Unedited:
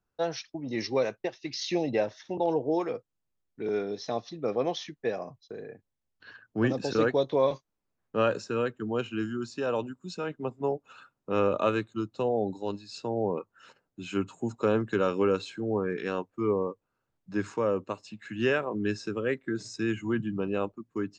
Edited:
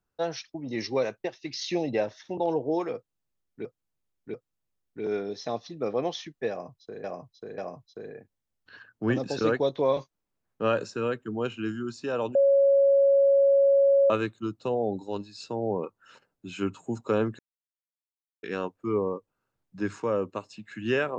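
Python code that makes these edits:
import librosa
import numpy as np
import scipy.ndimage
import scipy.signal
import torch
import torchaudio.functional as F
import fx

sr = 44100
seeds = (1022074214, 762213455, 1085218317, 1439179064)

y = fx.edit(x, sr, fx.repeat(start_s=2.96, length_s=0.69, count=3),
    fx.repeat(start_s=5.12, length_s=0.54, count=3),
    fx.bleep(start_s=9.89, length_s=1.75, hz=554.0, db=-16.5),
    fx.silence(start_s=14.93, length_s=1.04), tone=tone)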